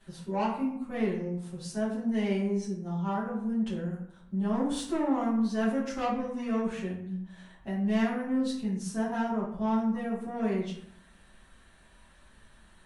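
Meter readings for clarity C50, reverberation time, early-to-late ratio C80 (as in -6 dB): 3.5 dB, 0.70 s, 7.5 dB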